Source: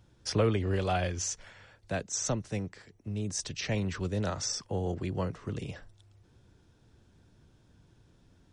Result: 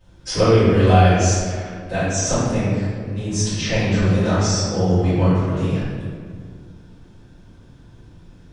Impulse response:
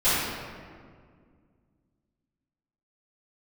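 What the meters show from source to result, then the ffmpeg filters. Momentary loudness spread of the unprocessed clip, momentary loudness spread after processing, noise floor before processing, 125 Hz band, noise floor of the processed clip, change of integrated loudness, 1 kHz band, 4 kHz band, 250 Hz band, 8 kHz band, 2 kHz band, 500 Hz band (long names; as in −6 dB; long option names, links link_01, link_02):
11 LU, 14 LU, −64 dBFS, +16.0 dB, −46 dBFS, +14.0 dB, +15.5 dB, +11.5 dB, +15.5 dB, +10.0 dB, +13.5 dB, +14.0 dB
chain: -filter_complex "[1:a]atrim=start_sample=2205[link_01];[0:a][link_01]afir=irnorm=-1:irlink=0,volume=-3.5dB"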